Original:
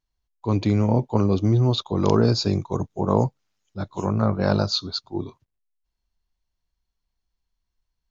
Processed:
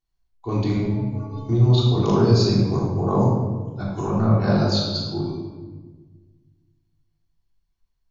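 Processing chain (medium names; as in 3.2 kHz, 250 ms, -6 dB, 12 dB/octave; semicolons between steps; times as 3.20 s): in parallel at -2.5 dB: level held to a coarse grid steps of 14 dB; 0.77–1.49 s: on the sum: inharmonic resonator 130 Hz, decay 0.58 s, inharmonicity 0.03; simulated room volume 1100 m³, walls mixed, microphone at 3.4 m; trim -8.5 dB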